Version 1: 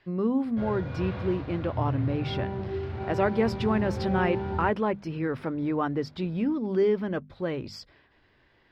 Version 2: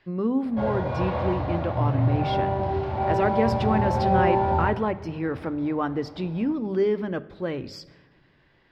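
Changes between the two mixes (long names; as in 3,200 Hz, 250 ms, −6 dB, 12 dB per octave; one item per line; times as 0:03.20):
background: add flat-topped bell 770 Hz +11 dB 1.1 octaves
reverb: on, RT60 1.2 s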